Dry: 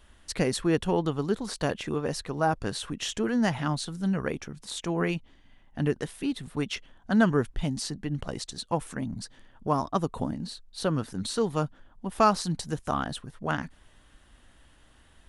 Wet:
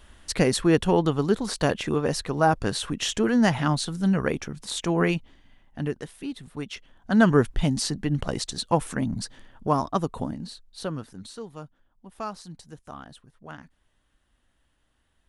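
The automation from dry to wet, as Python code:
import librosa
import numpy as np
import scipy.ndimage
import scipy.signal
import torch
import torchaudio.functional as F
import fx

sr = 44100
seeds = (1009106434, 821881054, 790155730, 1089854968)

y = fx.gain(x, sr, db=fx.line((5.08, 5.0), (6.06, -4.0), (6.75, -4.0), (7.36, 6.0), (9.22, 6.0), (10.81, -3.0), (11.48, -12.5)))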